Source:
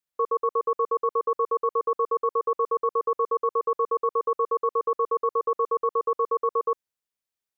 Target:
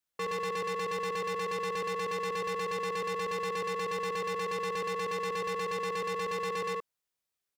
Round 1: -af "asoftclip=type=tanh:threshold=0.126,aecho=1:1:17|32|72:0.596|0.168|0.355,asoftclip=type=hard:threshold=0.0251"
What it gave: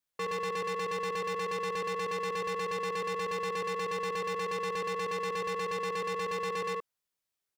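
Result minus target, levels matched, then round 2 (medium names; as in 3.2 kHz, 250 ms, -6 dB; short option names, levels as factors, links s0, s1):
saturation: distortion +14 dB
-af "asoftclip=type=tanh:threshold=0.316,aecho=1:1:17|32|72:0.596|0.168|0.355,asoftclip=type=hard:threshold=0.0251"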